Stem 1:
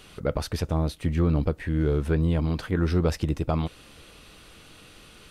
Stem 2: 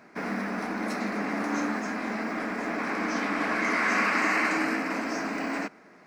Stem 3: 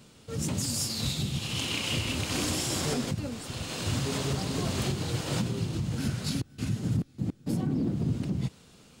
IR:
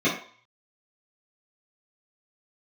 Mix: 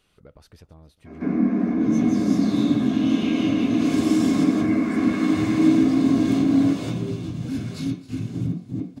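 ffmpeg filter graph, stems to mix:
-filter_complex "[0:a]acompressor=threshold=-27dB:ratio=6,volume=-17dB,asplit=3[link_01][link_02][link_03];[link_02]volume=-21dB[link_04];[1:a]tiltshelf=frequency=970:gain=6.5,acrossover=split=260[link_05][link_06];[link_06]acompressor=threshold=-43dB:ratio=2.5[link_07];[link_05][link_07]amix=inputs=2:normalize=0,adelay=1050,volume=-3dB,asplit=2[link_08][link_09];[link_09]volume=-7.5dB[link_10];[2:a]adelay=1500,volume=-6dB,asplit=3[link_11][link_12][link_13];[link_12]volume=-11dB[link_14];[link_13]volume=-17.5dB[link_15];[link_03]apad=whole_len=463055[link_16];[link_11][link_16]sidechaincompress=threshold=-56dB:ratio=8:attack=16:release=359[link_17];[3:a]atrim=start_sample=2205[link_18];[link_10][link_14]amix=inputs=2:normalize=0[link_19];[link_19][link_18]afir=irnorm=-1:irlink=0[link_20];[link_04][link_15]amix=inputs=2:normalize=0,aecho=0:1:268|536|804|1072|1340|1608|1876:1|0.49|0.24|0.118|0.0576|0.0282|0.0138[link_21];[link_01][link_08][link_17][link_20][link_21]amix=inputs=5:normalize=0"

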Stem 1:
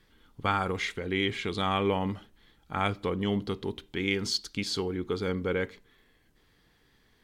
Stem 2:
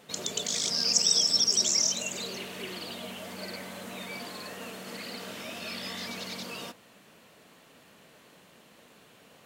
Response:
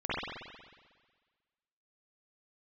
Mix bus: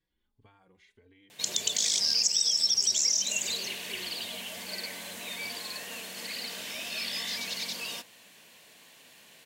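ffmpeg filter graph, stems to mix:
-filter_complex "[0:a]acompressor=threshold=-38dB:ratio=5,asplit=2[link_01][link_02];[link_02]adelay=3.8,afreqshift=1.6[link_03];[link_01][link_03]amix=inputs=2:normalize=1,volume=-17dB[link_04];[1:a]tiltshelf=frequency=1100:gain=-7,acompressor=threshold=-22dB:ratio=6,adelay=1300,volume=-0.5dB[link_05];[link_04][link_05]amix=inputs=2:normalize=0,equalizer=frequency=1300:width_type=o:width=0.22:gain=-11"

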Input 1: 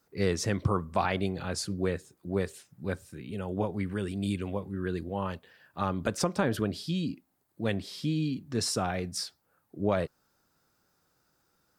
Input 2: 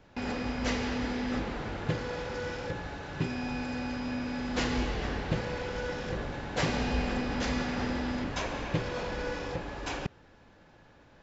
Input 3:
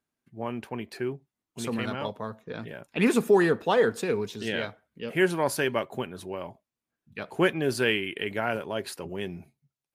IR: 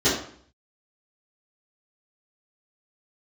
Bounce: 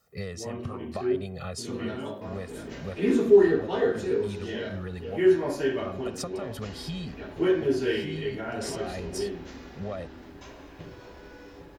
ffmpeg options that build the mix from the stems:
-filter_complex "[0:a]aecho=1:1:1.6:0.99,acompressor=threshold=-31dB:ratio=10,volume=-0.5dB[link_01];[1:a]adelay=2050,volume=-15.5dB,asplit=2[link_02][link_03];[link_03]volume=-18dB[link_04];[2:a]volume=-16.5dB,asplit=3[link_05][link_06][link_07];[link_06]volume=-7dB[link_08];[link_07]apad=whole_len=519675[link_09];[link_01][link_09]sidechaincompress=threshold=-52dB:ratio=8:attack=40:release=134[link_10];[3:a]atrim=start_sample=2205[link_11];[link_04][link_08]amix=inputs=2:normalize=0[link_12];[link_12][link_11]afir=irnorm=-1:irlink=0[link_13];[link_10][link_02][link_05][link_13]amix=inputs=4:normalize=0"

